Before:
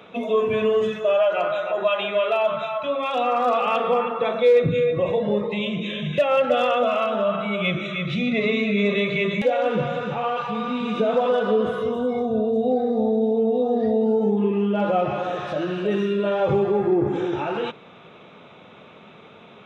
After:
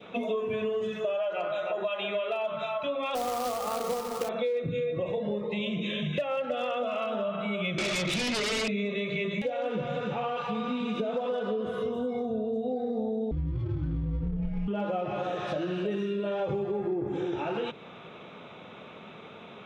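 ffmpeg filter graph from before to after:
-filter_complex "[0:a]asettb=1/sr,asplit=3[s0][s1][s2];[s0]atrim=end=3.154[s3];[s1]atrim=start=3.15:end=4.29,asetpts=PTS-STARTPTS,afade=t=in:d=0.004:c=qsin,afade=t=out:st=1.136:d=0.004:c=qsin,lowpass=f=1500:w=0.5412,lowpass=f=1500:w=1.3066,acrusher=bits=2:mode=log:mix=0:aa=0.000001[s4];[s2]atrim=start=4.286[s5];[s3][s4]acrossfade=d=0.004:c1=hsin:c2=qsin[s6];[s6][s5]acrossfade=d=0.004:c1=qsin:c2=hsin,asettb=1/sr,asplit=3[s7][s8][s9];[s7]atrim=end=7.784[s10];[s8]atrim=start=7.78:end=8.68,asetpts=PTS-STARTPTS,afade=t=in:d=0.004:c=qsin,afade=t=out:st=0.896:d=0.004:c=qsin,highpass=280,acrossover=split=410|1100[s11][s12][s13];[s11]acompressor=threshold=0.02:ratio=4[s14];[s12]acompressor=threshold=0.0251:ratio=4[s15];[s13]acompressor=threshold=0.0282:ratio=4[s16];[s14][s15][s16]amix=inputs=3:normalize=0,aeval=exprs='0.126*sin(PI/2*3.55*val(0)/0.126)':c=same[s17];[s9]atrim=start=8.676[s18];[s10][s17]acrossfade=d=0.004:c1=hsin:c2=qsin[s19];[s19][s18]acrossfade=d=0.004:c1=qsin:c2=hsin,asettb=1/sr,asplit=3[s20][s21][s22];[s20]atrim=end=13.314[s23];[s21]atrim=start=13.31:end=14.68,asetpts=PTS-STARTPTS,afade=t=in:d=0.004:c=qsin,afade=t=out:st=1.366:d=0.004:c=qsin,adynamicsmooth=sensitivity=2.5:basefreq=1200,afreqshift=-380[s24];[s22]atrim=start=14.676[s25];[s23][s24]acrossfade=d=0.004:c1=hsin:c2=qsin[s26];[s26][s25]acrossfade=d=0.004:c1=qsin:c2=hsin,bandreject=f=47.26:t=h:w=4,bandreject=f=94.52:t=h:w=4,bandreject=f=141.78:t=h:w=4,adynamicequalizer=threshold=0.0141:dfrequency=1200:dqfactor=0.98:tfrequency=1200:tqfactor=0.98:attack=5:release=100:ratio=0.375:range=2:mode=cutabove:tftype=bell,acompressor=threshold=0.0398:ratio=6"

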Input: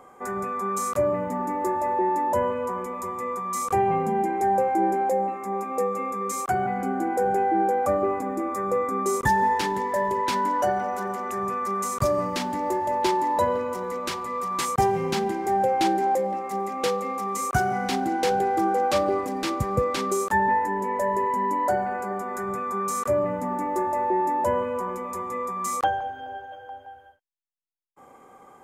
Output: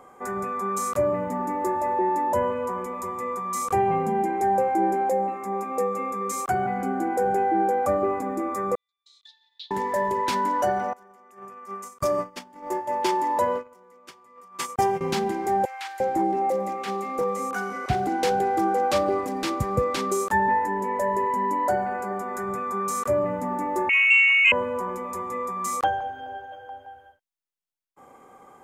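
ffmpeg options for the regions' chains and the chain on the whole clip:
-filter_complex "[0:a]asettb=1/sr,asplit=3[s0][s1][s2];[s0]atrim=end=8.754[s3];[s1]atrim=start=8.75:end=9.71,asetpts=PTS-STARTPTS,afade=t=in:d=0.004:c=qsin,afade=t=out:st=0.956:d=0.004:c=qsin,asuperpass=centerf=3800:order=4:qfactor=4.8,agate=range=0.0224:threshold=0.001:ratio=3:release=100:detection=peak[s4];[s2]atrim=start=9.706[s5];[s3][s4]acrossfade=d=0.004:c1=hsin:c2=qsin[s6];[s6][s5]acrossfade=d=0.004:c1=qsin:c2=hsin,asettb=1/sr,asplit=3[s7][s8][s9];[s7]atrim=end=10.934[s10];[s8]atrim=start=10.93:end=15.01,asetpts=PTS-STARTPTS,afade=t=in:d=0.004:c=qsin,afade=t=out:st=4.076:d=0.004:c=qsin,highpass=f=220:p=1,agate=range=0.0794:threshold=0.0447:ratio=16:release=100:detection=peak,bandreject=f=4000:w=10[s11];[s9]atrim=start=15.006[s12];[s10][s11]acrossfade=d=0.004:c1=hsin:c2=qsin[s13];[s13][s12]acrossfade=d=0.004:c1=qsin:c2=hsin,asettb=1/sr,asplit=3[s14][s15][s16];[s14]atrim=end=15.654[s17];[s15]atrim=start=15.65:end=18.07,asetpts=PTS-STARTPTS,afade=t=in:d=0.004:c=qsin,afade=t=out:st=2.416:d=0.004:c=qsin,acrossover=split=2500[s18][s19];[s19]acompressor=threshold=0.00891:ratio=4:attack=1:release=60[s20];[s18][s20]amix=inputs=2:normalize=0,acrossover=split=1100[s21][s22];[s21]adelay=350[s23];[s23][s22]amix=inputs=2:normalize=0,atrim=end_sample=106722[s24];[s16]atrim=start=18.066[s25];[s17][s24]acrossfade=d=0.004:c1=hsin:c2=qsin[s26];[s26][s25]acrossfade=d=0.004:c1=qsin:c2=hsin,asettb=1/sr,asplit=3[s27][s28][s29];[s27]atrim=end=23.894[s30];[s28]atrim=start=23.89:end=24.52,asetpts=PTS-STARTPTS,afade=t=in:d=0.004:c=qsin,afade=t=out:st=0.626:d=0.004:c=qsin,lowpass=f=2600:t=q:w=0.5098,lowpass=f=2600:t=q:w=0.6013,lowpass=f=2600:t=q:w=0.9,lowpass=f=2600:t=q:w=2.563,afreqshift=-3100,acontrast=69,equalizer=f=1400:t=o:w=0.29:g=-10[s31];[s29]atrim=start=24.516[s32];[s30][s31]acrossfade=d=0.004:c1=hsin:c2=qsin[s33];[s33][s32]acrossfade=d=0.004:c1=qsin:c2=hsin"

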